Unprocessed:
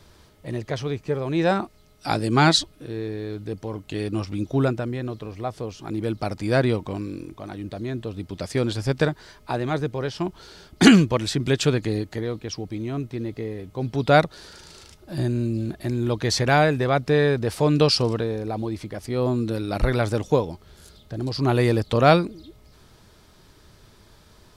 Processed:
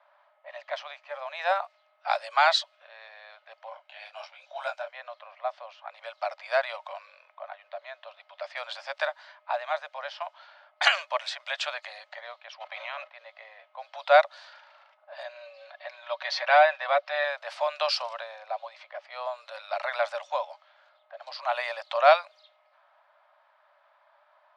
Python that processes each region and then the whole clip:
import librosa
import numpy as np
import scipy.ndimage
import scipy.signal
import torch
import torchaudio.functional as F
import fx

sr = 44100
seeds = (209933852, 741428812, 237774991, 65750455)

y = fx.chain(x, sr, fx.high_shelf(hz=4500.0, db=11.5),
    fx.comb(ms=1.3, depth=0.35),
    fx.detune_double(cents=44), at=(3.69, 4.94))
y = fx.spec_clip(y, sr, under_db=29, at=(12.6, 13.09), fade=0.02)
y = fx.level_steps(y, sr, step_db=11, at=(12.6, 13.09), fade=0.02)
y = fx.chain(y, sr, fx.lowpass(hz=5200.0, slope=24),
    fx.comb(ms=5.3, depth=0.49), at=(15.23, 17.24))
y = scipy.signal.sosfilt(scipy.signal.butter(2, 3500.0, 'lowpass', fs=sr, output='sos'), y)
y = fx.env_lowpass(y, sr, base_hz=1400.0, full_db=-20.0)
y = scipy.signal.sosfilt(scipy.signal.cheby1(8, 1.0, 570.0, 'highpass', fs=sr, output='sos'), y)